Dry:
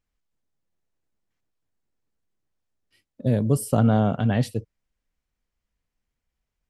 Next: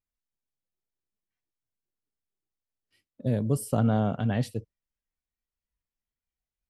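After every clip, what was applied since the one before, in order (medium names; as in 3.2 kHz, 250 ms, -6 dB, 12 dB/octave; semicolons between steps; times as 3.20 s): spectral noise reduction 8 dB; trim -5 dB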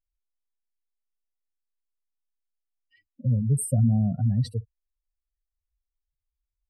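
spectral contrast enhancement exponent 3.2; peaking EQ 330 Hz -8 dB 2.9 oct; trim +8.5 dB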